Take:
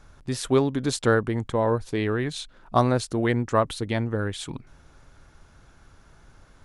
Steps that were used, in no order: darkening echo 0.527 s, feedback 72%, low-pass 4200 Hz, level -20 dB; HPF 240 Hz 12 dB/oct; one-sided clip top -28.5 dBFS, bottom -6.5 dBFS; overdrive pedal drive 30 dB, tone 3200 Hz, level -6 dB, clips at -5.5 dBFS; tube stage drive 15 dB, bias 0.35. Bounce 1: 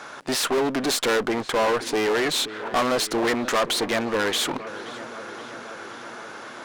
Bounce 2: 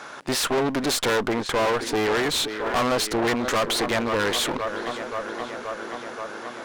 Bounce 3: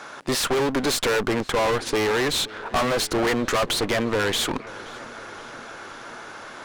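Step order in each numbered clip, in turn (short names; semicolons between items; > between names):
overdrive pedal > darkening echo > one-sided clip > HPF > tube stage; darkening echo > overdrive pedal > tube stage > HPF > one-sided clip; HPF > overdrive pedal > tube stage > one-sided clip > darkening echo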